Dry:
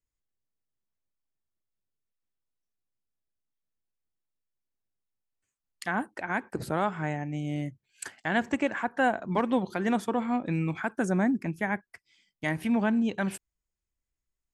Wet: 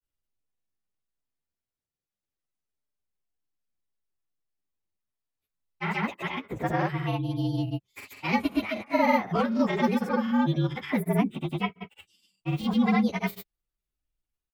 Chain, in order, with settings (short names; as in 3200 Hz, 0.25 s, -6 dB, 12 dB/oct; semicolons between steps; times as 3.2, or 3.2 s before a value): inharmonic rescaling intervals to 116%; grains, pitch spread up and down by 0 st; gain +6 dB